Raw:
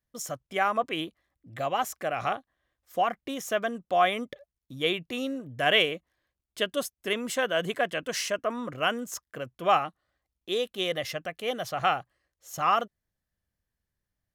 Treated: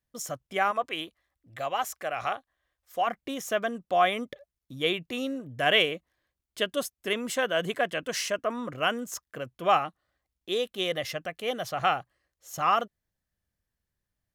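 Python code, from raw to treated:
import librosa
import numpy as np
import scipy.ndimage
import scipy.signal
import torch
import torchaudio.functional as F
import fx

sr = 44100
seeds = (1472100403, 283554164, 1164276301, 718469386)

y = fx.peak_eq(x, sr, hz=200.0, db=-9.0, octaves=2.1, at=(0.71, 3.07))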